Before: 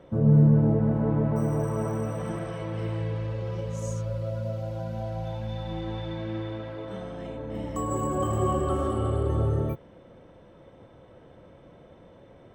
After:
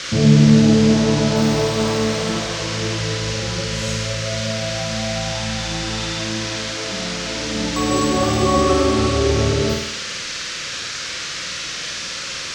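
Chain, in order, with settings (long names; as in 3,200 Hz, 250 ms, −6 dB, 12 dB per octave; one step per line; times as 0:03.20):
noise in a band 1,200–6,300 Hz −38 dBFS
on a send: flutter between parallel walls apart 8.6 metres, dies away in 0.66 s
on the sum: level +8 dB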